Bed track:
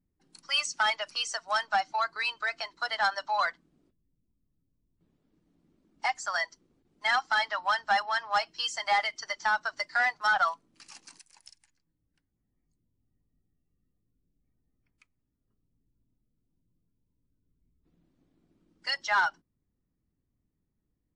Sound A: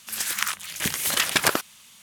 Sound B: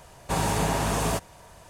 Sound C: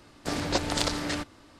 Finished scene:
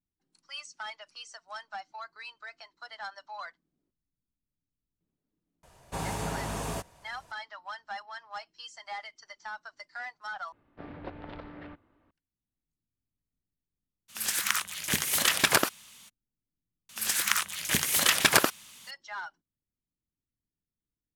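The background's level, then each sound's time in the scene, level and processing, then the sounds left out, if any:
bed track −13.5 dB
0:05.63: mix in B −8.5 dB
0:10.52: overwrite with C −13 dB + Bessel low-pass filter 1,800 Hz, order 6
0:14.08: mix in A −2 dB, fades 0.02 s
0:16.89: mix in A −0.5 dB

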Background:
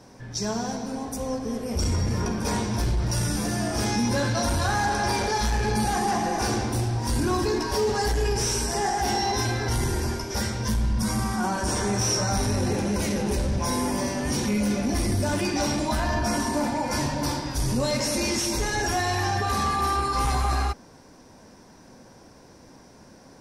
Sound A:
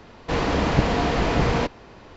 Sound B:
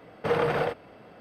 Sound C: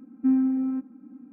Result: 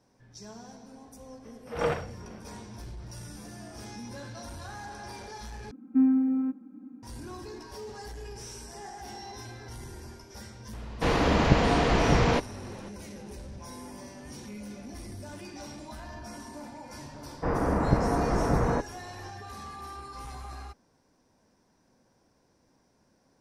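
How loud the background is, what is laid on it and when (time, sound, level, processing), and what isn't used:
background −17.5 dB
0:01.42: mix in B −0.5 dB, fades 0.05 s + tremolo with a sine in dB 2.2 Hz, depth 22 dB
0:05.71: overwrite with C −0.5 dB
0:10.73: mix in A −1.5 dB
0:17.14: mix in A −4 dB + low-pass filter 1,600 Hz 24 dB per octave

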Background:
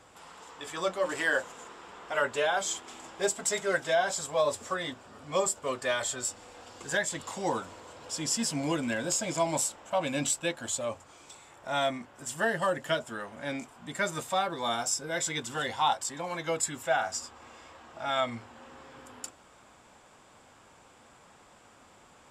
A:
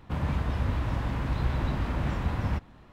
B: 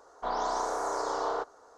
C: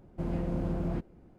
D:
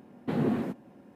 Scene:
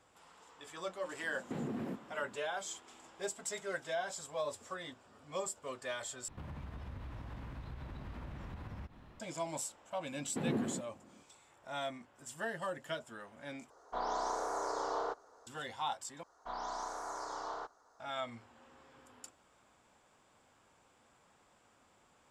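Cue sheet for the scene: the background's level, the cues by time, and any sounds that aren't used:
background −11 dB
0:01.23: mix in D −3.5 dB + downward compressor, threshold −32 dBFS
0:06.28: overwrite with A −4 dB + downward compressor, threshold −39 dBFS
0:10.08: mix in D −7.5 dB
0:13.70: overwrite with B −5.5 dB
0:16.23: overwrite with B −8 dB + parametric band 450 Hz −8.5 dB 1 octave
not used: C

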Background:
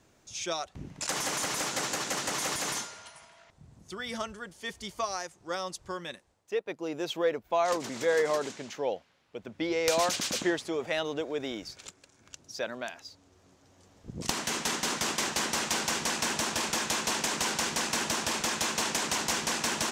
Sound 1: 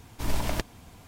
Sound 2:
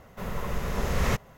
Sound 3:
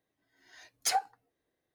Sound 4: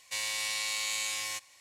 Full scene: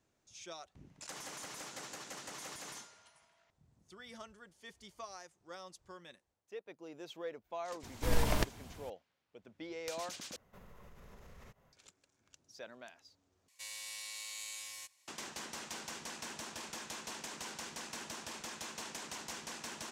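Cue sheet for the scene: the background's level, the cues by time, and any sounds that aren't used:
background −15 dB
0:07.83: mix in 1 −2.5 dB
0:10.36: overwrite with 2 −17 dB + downward compressor 12 to 1, threshold −34 dBFS
0:13.48: overwrite with 4 −16 dB + high-shelf EQ 4,600 Hz +8 dB
not used: 3

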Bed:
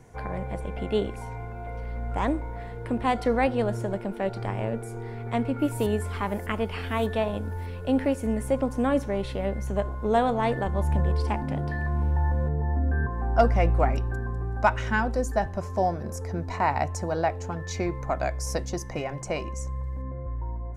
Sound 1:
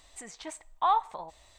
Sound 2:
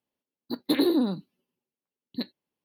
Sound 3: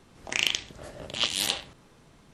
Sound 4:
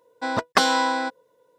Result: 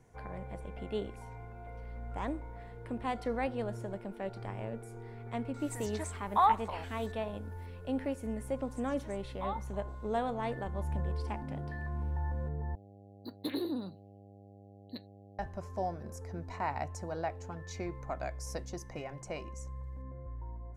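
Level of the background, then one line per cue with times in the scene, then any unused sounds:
bed −10.5 dB
0:05.54: mix in 1 −0.5 dB + parametric band 3,100 Hz −12.5 dB 0.28 octaves
0:08.59: mix in 1 −14.5 dB
0:12.75: overwrite with 2 −12.5 dB + hum with harmonics 100 Hz, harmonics 8, −42 dBFS
not used: 3, 4

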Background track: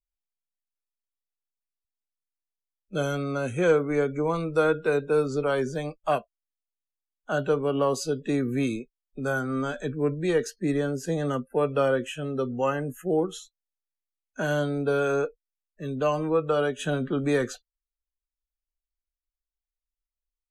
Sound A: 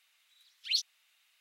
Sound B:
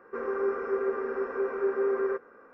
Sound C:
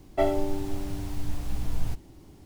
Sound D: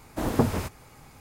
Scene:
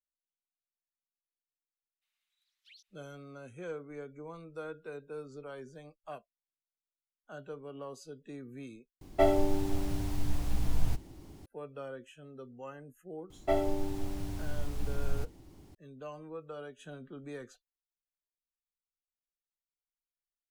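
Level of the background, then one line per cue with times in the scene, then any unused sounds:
background track −19.5 dB
0:02.01: mix in A −17 dB, fades 0.02 s + downward compressor 12 to 1, threshold −37 dBFS
0:09.01: overwrite with C −0.5 dB
0:13.30: mix in C −4.5 dB
not used: B, D

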